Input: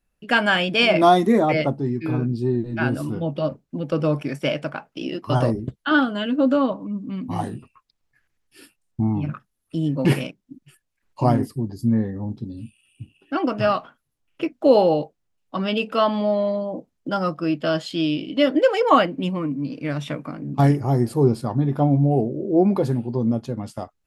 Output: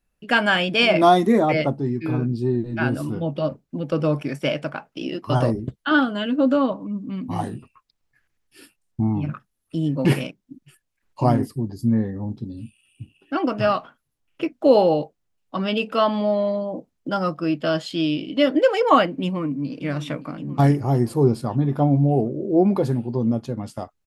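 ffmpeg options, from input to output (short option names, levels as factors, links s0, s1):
-filter_complex "[0:a]asplit=2[s0][s1];[s1]afade=t=in:st=19.23:d=0.01,afade=t=out:st=19.82:d=0.01,aecho=0:1:570|1140|1710|2280|2850|3420|3990:0.177828|0.115588|0.0751323|0.048836|0.0317434|0.0206332|0.0134116[s2];[s0][s2]amix=inputs=2:normalize=0"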